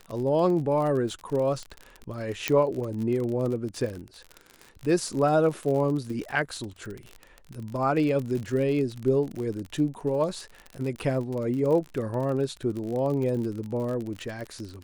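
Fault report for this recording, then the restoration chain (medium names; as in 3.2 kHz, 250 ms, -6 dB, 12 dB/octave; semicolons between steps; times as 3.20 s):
crackle 43 per s -31 dBFS
2.48 s: pop -7 dBFS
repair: de-click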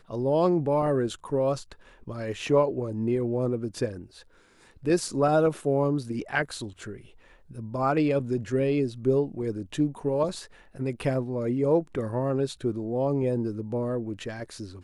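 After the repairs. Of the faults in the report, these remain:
nothing left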